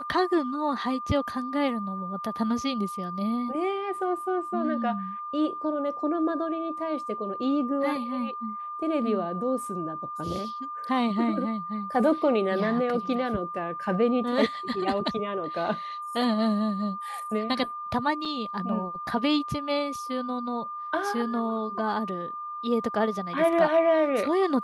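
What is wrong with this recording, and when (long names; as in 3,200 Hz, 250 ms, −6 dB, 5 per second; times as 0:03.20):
whistle 1,200 Hz −33 dBFS
0:18.25: drop-out 4.8 ms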